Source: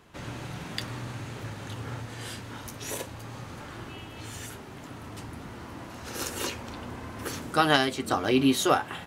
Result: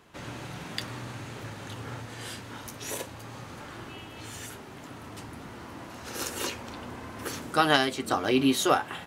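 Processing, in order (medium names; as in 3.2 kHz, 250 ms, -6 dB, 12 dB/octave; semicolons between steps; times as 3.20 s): bass shelf 130 Hz -6 dB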